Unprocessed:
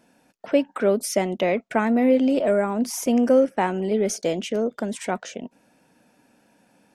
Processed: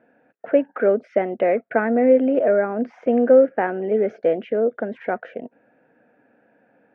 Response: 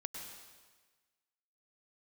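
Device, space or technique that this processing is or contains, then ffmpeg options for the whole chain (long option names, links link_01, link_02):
bass cabinet: -af "highpass=79,equalizer=frequency=89:width_type=q:width=4:gain=-8,equalizer=frequency=180:width_type=q:width=4:gain=-7,equalizer=frequency=480:width_type=q:width=4:gain=7,equalizer=frequency=690:width_type=q:width=4:gain=4,equalizer=frequency=1000:width_type=q:width=4:gain=-8,equalizer=frequency=1600:width_type=q:width=4:gain=6,lowpass=frequency=2100:width=0.5412,lowpass=frequency=2100:width=1.3066"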